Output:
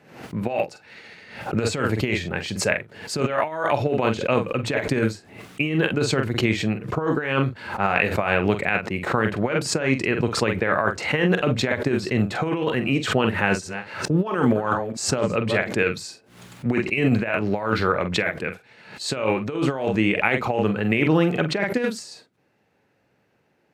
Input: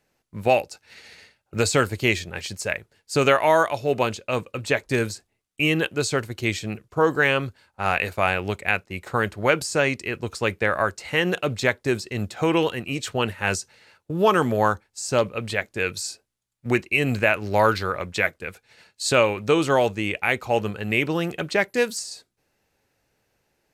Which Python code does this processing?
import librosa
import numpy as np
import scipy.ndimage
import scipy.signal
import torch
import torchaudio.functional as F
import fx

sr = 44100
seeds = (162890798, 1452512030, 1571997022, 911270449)

y = fx.reverse_delay(x, sr, ms=218, wet_db=-13.0, at=(13.4, 15.64))
y = fx.high_shelf(y, sr, hz=4300.0, db=-5.0)
y = fx.doubler(y, sr, ms=45.0, db=-9.0)
y = fx.over_compress(y, sr, threshold_db=-23.0, ratio=-0.5)
y = scipy.signal.sosfilt(scipy.signal.butter(2, 180.0, 'highpass', fs=sr, output='sos'), y)
y = fx.bass_treble(y, sr, bass_db=8, treble_db=-10)
y = fx.pre_swell(y, sr, db_per_s=87.0)
y = y * 10.0 ** (2.0 / 20.0)